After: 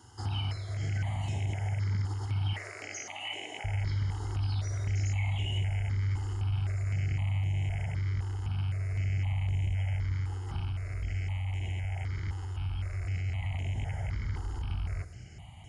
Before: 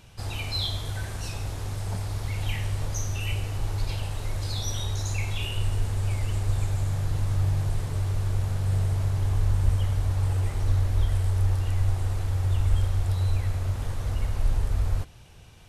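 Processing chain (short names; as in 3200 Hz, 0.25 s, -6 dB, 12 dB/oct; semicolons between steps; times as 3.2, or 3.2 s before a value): rattling part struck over -26 dBFS, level -24 dBFS; HPF 80 Hz 24 dB/oct, from 2.53 s 340 Hz, from 3.64 s 48 Hz; limiter -25 dBFS, peak gain reduction 11 dB; compressor, threshold -32 dBFS, peak gain reduction 4.5 dB; added noise violet -52 dBFS; reverb RT60 1.2 s, pre-delay 3 ms, DRR 18.5 dB; downsampling 22050 Hz; step phaser 3.9 Hz 630–4800 Hz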